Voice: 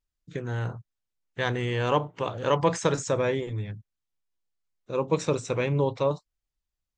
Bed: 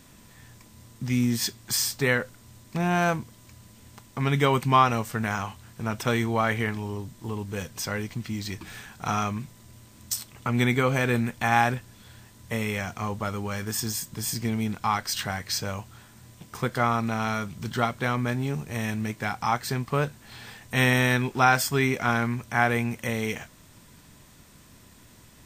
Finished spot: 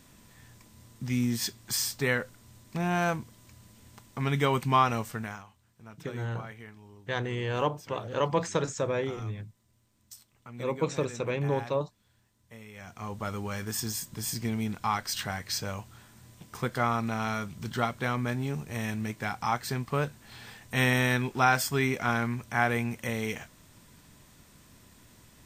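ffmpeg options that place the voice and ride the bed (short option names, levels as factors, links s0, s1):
-filter_complex "[0:a]adelay=5700,volume=0.631[s0];[1:a]volume=3.98,afade=t=out:st=5.05:d=0.39:silence=0.16788,afade=t=in:st=12.73:d=0.59:silence=0.158489[s1];[s0][s1]amix=inputs=2:normalize=0"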